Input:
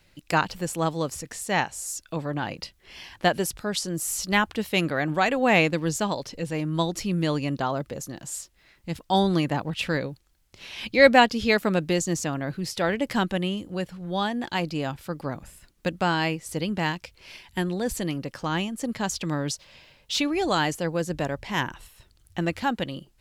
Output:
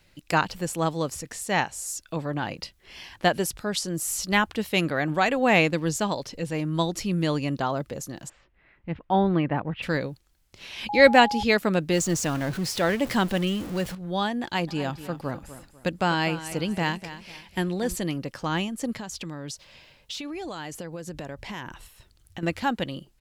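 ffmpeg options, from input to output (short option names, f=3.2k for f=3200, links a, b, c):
-filter_complex "[0:a]asplit=3[a][b][c];[a]afade=t=out:st=8.28:d=0.02[d];[b]lowpass=f=2.5k:w=0.5412,lowpass=f=2.5k:w=1.3066,afade=t=in:st=8.28:d=0.02,afade=t=out:st=9.82:d=0.02[e];[c]afade=t=in:st=9.82:d=0.02[f];[d][e][f]amix=inputs=3:normalize=0,asettb=1/sr,asplit=3[g][h][i];[g]atrim=end=10.894[j];[h]atrim=start=10.89:end=11.43,asetpts=PTS-STARTPTS,afade=t=in:d=0.004:c=qsin,afade=t=out:st=0.536:d=0.004:c=qsin,aeval=exprs='val(0)+0.0447*sin(2*PI*830*n/s)':c=same[k];[i]atrim=start=11.426[l];[j][k]acrossfade=d=0.004:c1=hsin:c2=qsin[m];[m][l]acrossfade=d=0.004:c1=qsin:c2=hsin,asettb=1/sr,asplit=3[n][o][p];[n]atrim=end=11.934[q];[o]atrim=start=11.93:end=13.95,asetpts=PTS-STARTPTS,afade=t=in:d=0.004:c=qsin,afade=t=out:st=2.016:d=0.004:c=qsin,aeval=exprs='val(0)+0.5*0.0237*sgn(val(0))':c=same[r];[p]atrim=start=13.946[s];[q][r]acrossfade=d=0.004:c1=hsin:c2=qsin[t];[t][s]acrossfade=d=0.004:c1=qsin:c2=hsin,asplit=3[u][v][w];[u]afade=t=out:st=14.67:d=0.02[x];[v]aecho=1:1:248|496|744:0.211|0.0676|0.0216,afade=t=in:st=14.67:d=0.02,afade=t=out:st=17.94:d=0.02[y];[w]afade=t=in:st=17.94:d=0.02[z];[x][y][z]amix=inputs=3:normalize=0,asettb=1/sr,asplit=3[aa][ab][ac];[aa]atrim=end=18.954[ad];[ab]atrim=start=18.95:end=22.43,asetpts=PTS-STARTPTS,afade=t=in:d=0.004:c=qsin,afade=t=out:st=3.476:d=0.004:c=qsin,acompressor=threshold=-31dB:ratio=12:attack=3.2:release=140:knee=1:detection=peak[ae];[ac]atrim=start=22.426[af];[ad][ae]acrossfade=d=0.004:c1=hsin:c2=qsin[ag];[ag][af]acrossfade=d=0.004:c1=qsin:c2=hsin"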